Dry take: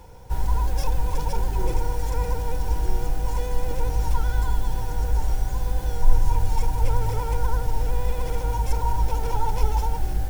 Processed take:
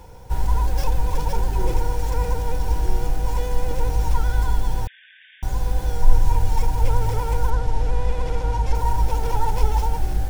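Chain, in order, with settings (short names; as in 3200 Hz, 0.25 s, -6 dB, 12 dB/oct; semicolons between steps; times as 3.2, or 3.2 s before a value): tracing distortion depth 0.085 ms; 4.87–5.43 brick-wall FIR band-pass 1500–3700 Hz; 7.5–8.75 air absorption 57 m; gain +2.5 dB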